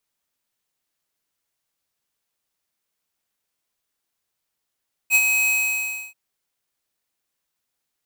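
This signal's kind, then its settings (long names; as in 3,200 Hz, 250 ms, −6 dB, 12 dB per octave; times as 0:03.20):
note with an ADSR envelope square 2,540 Hz, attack 51 ms, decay 52 ms, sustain −5.5 dB, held 0.38 s, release 655 ms −14 dBFS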